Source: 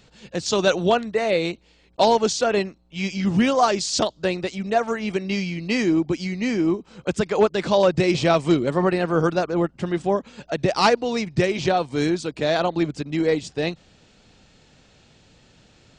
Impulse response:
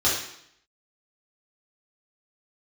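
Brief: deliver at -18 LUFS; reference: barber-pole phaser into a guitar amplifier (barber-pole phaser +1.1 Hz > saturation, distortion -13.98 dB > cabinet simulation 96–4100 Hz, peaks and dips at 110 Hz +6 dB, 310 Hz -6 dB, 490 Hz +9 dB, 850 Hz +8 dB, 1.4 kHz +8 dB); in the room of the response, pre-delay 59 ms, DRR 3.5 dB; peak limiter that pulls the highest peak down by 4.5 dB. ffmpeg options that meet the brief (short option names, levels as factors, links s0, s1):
-filter_complex "[0:a]alimiter=limit=0.266:level=0:latency=1,asplit=2[s0][s1];[1:a]atrim=start_sample=2205,adelay=59[s2];[s1][s2]afir=irnorm=-1:irlink=0,volume=0.126[s3];[s0][s3]amix=inputs=2:normalize=0,asplit=2[s4][s5];[s5]afreqshift=1.1[s6];[s4][s6]amix=inputs=2:normalize=1,asoftclip=threshold=0.112,highpass=96,equalizer=f=110:t=q:w=4:g=6,equalizer=f=310:t=q:w=4:g=-6,equalizer=f=490:t=q:w=4:g=9,equalizer=f=850:t=q:w=4:g=8,equalizer=f=1400:t=q:w=4:g=8,lowpass=f=4100:w=0.5412,lowpass=f=4100:w=1.3066,volume=2"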